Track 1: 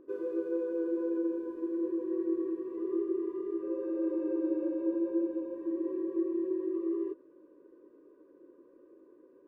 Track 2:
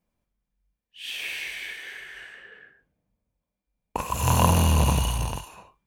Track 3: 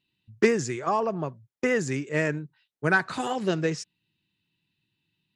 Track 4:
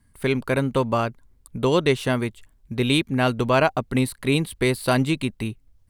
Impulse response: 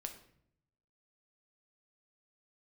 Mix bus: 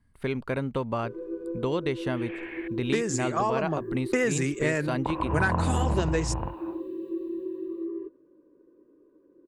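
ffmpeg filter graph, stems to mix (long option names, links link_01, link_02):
-filter_complex "[0:a]bass=frequency=250:gain=13,treble=frequency=4000:gain=-3,adelay=950,volume=-4.5dB[link_01];[1:a]lowpass=frequency=1700:width=0.5412,lowpass=frequency=1700:width=1.3066,adelay=1100,volume=1.5dB,asplit=3[link_02][link_03][link_04];[link_02]atrim=end=2.68,asetpts=PTS-STARTPTS,afade=type=out:start_time=2.676:duration=0.004:curve=hsin[link_05];[link_03]atrim=start=2.68:end=3.55,asetpts=PTS-STARTPTS,volume=0[link_06];[link_04]atrim=start=3.55,asetpts=PTS-STARTPTS,afade=type=in:duration=0.004:curve=hsin[link_07];[link_05][link_06][link_07]concat=n=3:v=0:a=1[link_08];[2:a]dynaudnorm=framelen=200:gausssize=7:maxgain=7dB,aexciter=amount=2.6:drive=5.5:freq=7300,adelay=2500,volume=0dB[link_09];[3:a]aemphasis=mode=reproduction:type=50fm,volume=-5.5dB[link_10];[link_01][link_08][link_09][link_10]amix=inputs=4:normalize=0,acompressor=threshold=-25dB:ratio=2.5"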